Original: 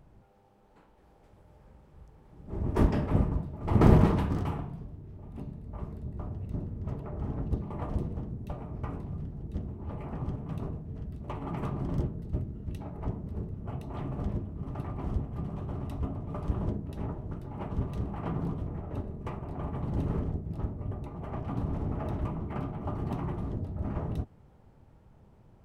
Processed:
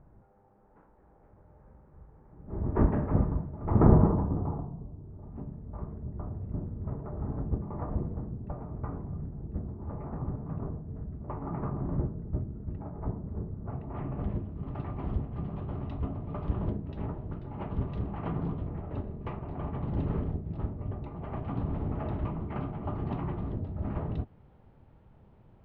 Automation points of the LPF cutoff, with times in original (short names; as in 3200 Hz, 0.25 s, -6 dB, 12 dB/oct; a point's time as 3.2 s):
LPF 24 dB/oct
3.62 s 1700 Hz
4.25 s 1000 Hz
4.81 s 1000 Hz
5.35 s 1600 Hz
13.61 s 1600 Hz
13.91 s 2200 Hz
14.51 s 3800 Hz